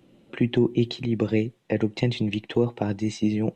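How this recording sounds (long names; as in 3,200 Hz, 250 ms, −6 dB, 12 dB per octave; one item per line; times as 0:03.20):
background noise floor −61 dBFS
spectral slope −6.5 dB per octave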